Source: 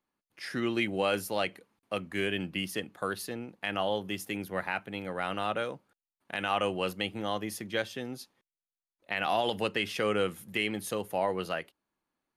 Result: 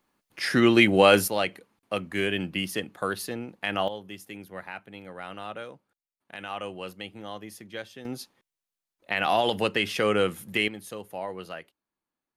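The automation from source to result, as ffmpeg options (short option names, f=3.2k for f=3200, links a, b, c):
-af "asetnsamples=n=441:p=0,asendcmd='1.28 volume volume 4dB;3.88 volume volume -6dB;8.05 volume volume 5dB;10.68 volume volume -5dB',volume=11.5dB"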